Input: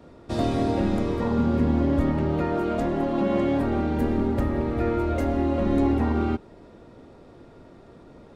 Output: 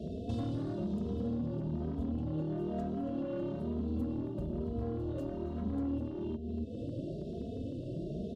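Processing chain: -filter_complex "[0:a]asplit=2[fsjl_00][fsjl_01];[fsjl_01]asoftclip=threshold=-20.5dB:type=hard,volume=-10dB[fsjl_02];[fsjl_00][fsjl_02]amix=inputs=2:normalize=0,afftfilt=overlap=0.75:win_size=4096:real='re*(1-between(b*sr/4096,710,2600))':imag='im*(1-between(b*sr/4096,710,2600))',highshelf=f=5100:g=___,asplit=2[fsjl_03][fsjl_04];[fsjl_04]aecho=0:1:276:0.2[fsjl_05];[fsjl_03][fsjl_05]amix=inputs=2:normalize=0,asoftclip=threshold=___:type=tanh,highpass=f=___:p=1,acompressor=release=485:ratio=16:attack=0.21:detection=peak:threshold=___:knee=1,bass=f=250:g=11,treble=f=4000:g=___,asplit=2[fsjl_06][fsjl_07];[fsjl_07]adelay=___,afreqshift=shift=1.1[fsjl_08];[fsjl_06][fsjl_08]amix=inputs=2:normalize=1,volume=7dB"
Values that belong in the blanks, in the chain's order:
-6, -19dB, 160, -39dB, -1, 2.8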